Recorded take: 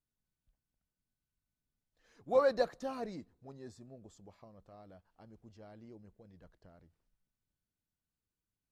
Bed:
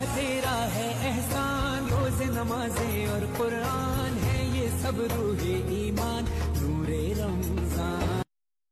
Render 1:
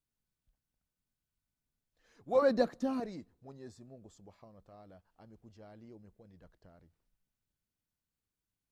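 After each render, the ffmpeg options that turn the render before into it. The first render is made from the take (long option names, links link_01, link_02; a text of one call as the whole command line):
ffmpeg -i in.wav -filter_complex "[0:a]asettb=1/sr,asplit=3[link_01][link_02][link_03];[link_01]atrim=end=2.424[link_04];[link_02]atrim=start=2.42:end=3,asetpts=PTS-STARTPTS,afade=type=in:duration=0.004:curve=qsin,afade=type=out:start_time=0.576:duration=0.004:curve=qsin,equalizer=frequency=240:width_type=o:width=0.81:gain=12.5[link_05];[link_03]atrim=start=2.996[link_06];[link_04][link_05]acrossfade=duration=0.004:curve1=hsin:curve2=qsin[link_07];[link_07][link_06]acrossfade=duration=0.004:curve1=qsin:curve2=hsin" out.wav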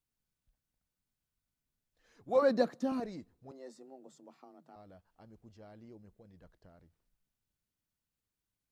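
ffmpeg -i in.wav -filter_complex "[0:a]asettb=1/sr,asplit=3[link_01][link_02][link_03];[link_01]atrim=end=2.294[link_04];[link_02]atrim=start=2.29:end=2.92,asetpts=PTS-STARTPTS,afade=type=in:duration=0.004:curve=qsin,afade=type=out:start_time=0.626:duration=0.004:curve=qsin,highpass=frequency=110:width=0.5412,highpass=frequency=110:width=1.3066[link_05];[link_03]atrim=start=2.916[link_06];[link_04][link_05]acrossfade=duration=0.004:curve1=hsin:curve2=qsin[link_07];[link_07][link_06]acrossfade=duration=0.004:curve1=qsin:curve2=hsin,asettb=1/sr,asplit=3[link_08][link_09][link_10];[link_08]atrim=end=3.514[link_11];[link_09]atrim=start=3.51:end=4.76,asetpts=PTS-STARTPTS,afade=type=in:duration=0.004:curve=qsin,afade=type=out:start_time=1.246:duration=0.004:curve=qsin,afreqshift=130[link_12];[link_10]atrim=start=4.756[link_13];[link_11][link_12]acrossfade=duration=0.004:curve1=hsin:curve2=qsin[link_14];[link_14][link_13]acrossfade=duration=0.004:curve1=qsin:curve2=hsin" out.wav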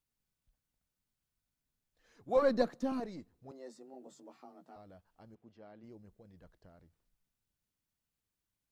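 ffmpeg -i in.wav -filter_complex "[0:a]asettb=1/sr,asplit=3[link_01][link_02][link_03];[link_01]atrim=end=2.374[link_04];[link_02]atrim=start=2.37:end=3.34,asetpts=PTS-STARTPTS,afade=type=in:duration=0.004:curve=qsin,afade=type=out:start_time=0.966:duration=0.004:curve=qsin,aeval=exprs='if(lt(val(0),0),0.708*val(0),val(0))':channel_layout=same[link_05];[link_03]atrim=start=3.336[link_06];[link_04][link_05]acrossfade=duration=0.004:curve1=hsin:curve2=qsin[link_07];[link_07][link_06]acrossfade=duration=0.004:curve1=qsin:curve2=hsin,asettb=1/sr,asplit=3[link_08][link_09][link_10];[link_08]atrim=end=3.924[link_11];[link_09]atrim=start=3.92:end=4.78,asetpts=PTS-STARTPTS,afade=type=in:duration=0.004:curve=qsin,afade=type=out:start_time=0.856:duration=0.004:curve=qsin,asplit=2[link_12][link_13];[link_13]adelay=16,volume=-2.5dB[link_14];[link_12][link_14]amix=inputs=2:normalize=0,atrim=end_sample=37926[link_15];[link_10]atrim=start=4.776[link_16];[link_11][link_15]acrossfade=duration=0.004:curve1=hsin:curve2=qsin[link_17];[link_17][link_16]acrossfade=duration=0.004:curve1=qsin:curve2=hsin,asplit=3[link_18][link_19][link_20];[link_18]afade=type=out:start_time=5.34:duration=0.02[link_21];[link_19]highpass=170,lowpass=3400,afade=type=in:start_time=5.34:duration=0.02,afade=type=out:start_time=5.82:duration=0.02[link_22];[link_20]afade=type=in:start_time=5.82:duration=0.02[link_23];[link_21][link_22][link_23]amix=inputs=3:normalize=0" out.wav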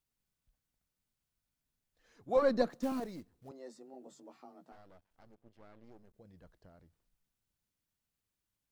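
ffmpeg -i in.wav -filter_complex "[0:a]asettb=1/sr,asplit=3[link_01][link_02][link_03];[link_01]atrim=end=2.704[link_04];[link_02]atrim=start=2.7:end=3.49,asetpts=PTS-STARTPTS,afade=type=in:duration=0.004:curve=qsin,afade=type=out:start_time=0.786:duration=0.004:curve=qsin,acrusher=bits=5:mode=log:mix=0:aa=0.000001[link_05];[link_03]atrim=start=3.486[link_06];[link_04][link_05]acrossfade=duration=0.004:curve1=hsin:curve2=qsin[link_07];[link_07][link_06]acrossfade=duration=0.004:curve1=qsin:curve2=hsin,asettb=1/sr,asplit=3[link_08][link_09][link_10];[link_08]atrim=end=4.724[link_11];[link_09]atrim=start=4.72:end=6.15,asetpts=PTS-STARTPTS,afade=type=in:duration=0.004:curve=qsin,afade=type=out:start_time=1.426:duration=0.004:curve=qsin,aeval=exprs='max(val(0),0)':channel_layout=same[link_12];[link_10]atrim=start=6.146[link_13];[link_11][link_12]acrossfade=duration=0.004:curve1=hsin:curve2=qsin[link_14];[link_14][link_13]acrossfade=duration=0.004:curve1=qsin:curve2=hsin" out.wav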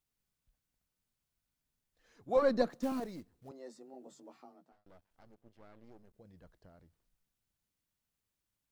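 ffmpeg -i in.wav -filter_complex "[0:a]asplit=2[link_01][link_02];[link_01]atrim=end=4.86,asetpts=PTS-STARTPTS,afade=type=out:start_time=4.38:duration=0.48[link_03];[link_02]atrim=start=4.86,asetpts=PTS-STARTPTS,afade=type=in:duration=0.004:curve=hsin[link_04];[link_03][link_04]concat=n=2:v=0:a=1" out.wav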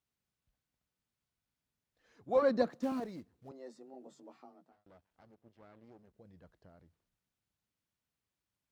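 ffmpeg -i in.wav -af "highpass=60,highshelf=frequency=6800:gain=-9.5" out.wav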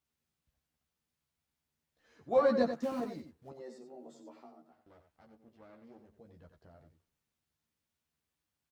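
ffmpeg -i in.wav -filter_complex "[0:a]asplit=2[link_01][link_02];[link_02]adelay=13,volume=-4dB[link_03];[link_01][link_03]amix=inputs=2:normalize=0,aecho=1:1:90:0.355" out.wav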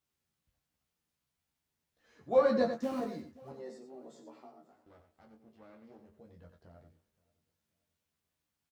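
ffmpeg -i in.wav -filter_complex "[0:a]asplit=2[link_01][link_02];[link_02]adelay=23,volume=-7dB[link_03];[link_01][link_03]amix=inputs=2:normalize=0,aecho=1:1:525|1050|1575:0.0668|0.0267|0.0107" out.wav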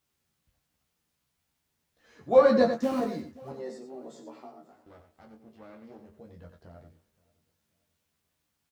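ffmpeg -i in.wav -af "volume=7dB" out.wav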